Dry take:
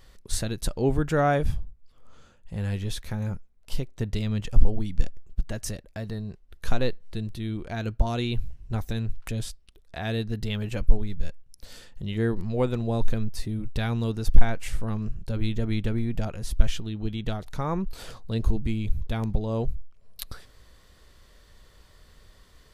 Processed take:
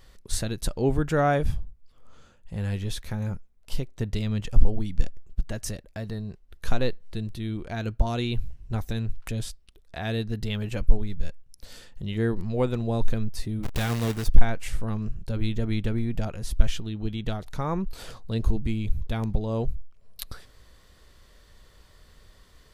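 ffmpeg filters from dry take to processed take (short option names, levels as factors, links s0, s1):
-filter_complex "[0:a]asettb=1/sr,asplit=3[s0][s1][s2];[s0]atrim=end=13.634[s3];[s1]atrim=start=13.63:end=14.27,asetpts=PTS-STARTPTS,afade=t=in:d=0.004:c=qsin,afade=t=out:st=0.636:d=0.004:c=qsin,acrusher=bits=2:mode=log:mix=0:aa=0.000001[s4];[s2]atrim=start=14.266[s5];[s3][s4]acrossfade=d=0.004:c1=hsin:c2=qsin[s6];[s6][s5]acrossfade=d=0.004:c1=qsin:c2=hsin"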